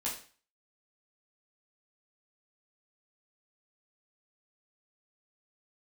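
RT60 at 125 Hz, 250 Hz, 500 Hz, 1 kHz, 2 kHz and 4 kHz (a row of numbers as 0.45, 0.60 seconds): 0.45, 0.40, 0.40, 0.40, 0.40, 0.40 seconds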